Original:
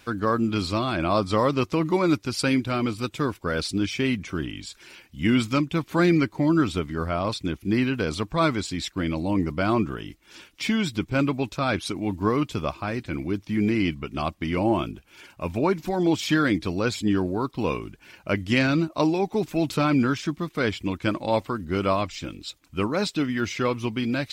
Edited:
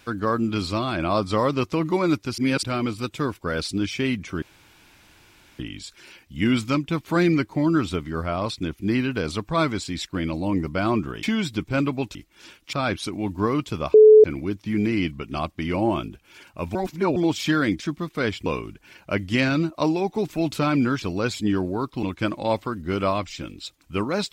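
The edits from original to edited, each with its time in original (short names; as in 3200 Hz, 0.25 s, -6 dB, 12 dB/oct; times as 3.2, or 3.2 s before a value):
2.38–2.63 reverse
4.42 insert room tone 1.17 s
10.06–10.64 move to 11.56
12.77–13.07 bleep 431 Hz -6.5 dBFS
15.58–15.99 reverse
16.63–17.64 swap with 20.2–20.86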